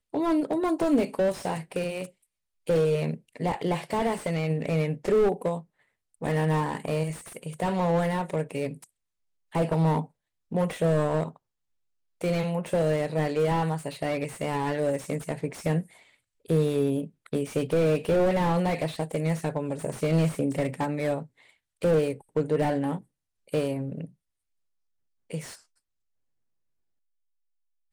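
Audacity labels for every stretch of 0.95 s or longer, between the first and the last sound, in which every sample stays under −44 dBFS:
24.060000	25.300000	silence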